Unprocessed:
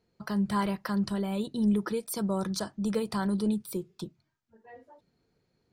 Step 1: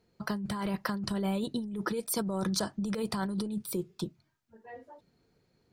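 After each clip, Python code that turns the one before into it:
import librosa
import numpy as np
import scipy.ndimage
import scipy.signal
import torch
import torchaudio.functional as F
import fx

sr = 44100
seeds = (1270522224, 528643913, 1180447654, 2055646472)

y = fx.over_compress(x, sr, threshold_db=-32.0, ratio=-1.0)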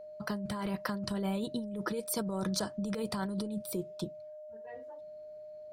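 y = x + 10.0 ** (-42.0 / 20.0) * np.sin(2.0 * np.pi * 610.0 * np.arange(len(x)) / sr)
y = y * 10.0 ** (-2.5 / 20.0)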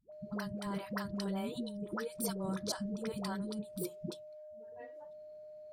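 y = fx.dispersion(x, sr, late='highs', ms=125.0, hz=390.0)
y = y * 10.0 ** (-3.5 / 20.0)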